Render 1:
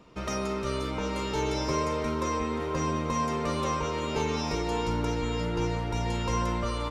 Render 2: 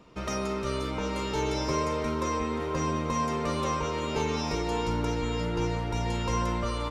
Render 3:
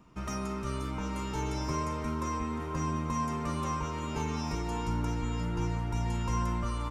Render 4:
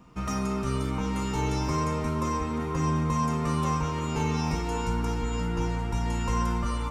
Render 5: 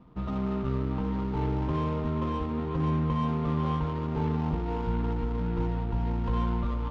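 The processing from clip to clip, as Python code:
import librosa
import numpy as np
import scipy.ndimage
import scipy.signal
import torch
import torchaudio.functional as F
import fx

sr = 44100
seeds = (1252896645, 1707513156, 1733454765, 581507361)

y1 = x
y2 = fx.graphic_eq_10(y1, sr, hz=(500, 2000, 4000), db=(-12, -4, -10))
y3 = fx.rev_fdn(y2, sr, rt60_s=0.82, lf_ratio=0.8, hf_ratio=0.85, size_ms=12.0, drr_db=4.5)
y3 = y3 * 10.0 ** (4.0 / 20.0)
y4 = scipy.ndimage.median_filter(y3, 25, mode='constant')
y4 = fx.air_absorb(y4, sr, metres=230.0)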